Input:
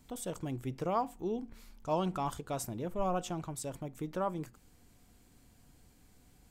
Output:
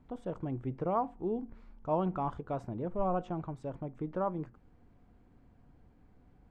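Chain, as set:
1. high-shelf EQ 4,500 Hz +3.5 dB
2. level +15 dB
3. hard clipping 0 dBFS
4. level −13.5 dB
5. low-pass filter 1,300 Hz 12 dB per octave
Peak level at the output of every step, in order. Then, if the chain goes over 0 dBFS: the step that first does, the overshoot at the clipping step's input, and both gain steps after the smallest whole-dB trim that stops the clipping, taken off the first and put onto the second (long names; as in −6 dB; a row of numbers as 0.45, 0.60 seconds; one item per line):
−19.5, −4.5, −4.5, −18.0, −19.0 dBFS
no step passes full scale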